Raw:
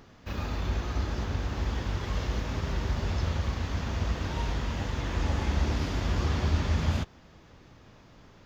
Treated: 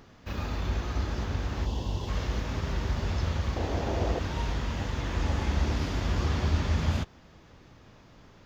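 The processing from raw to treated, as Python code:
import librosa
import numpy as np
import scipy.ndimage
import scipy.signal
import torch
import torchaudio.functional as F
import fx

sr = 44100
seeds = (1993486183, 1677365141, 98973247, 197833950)

y = fx.spec_box(x, sr, start_s=1.65, length_s=0.43, low_hz=1100.0, high_hz=2600.0, gain_db=-13)
y = fx.band_shelf(y, sr, hz=500.0, db=10.0, octaves=1.7, at=(3.56, 4.19))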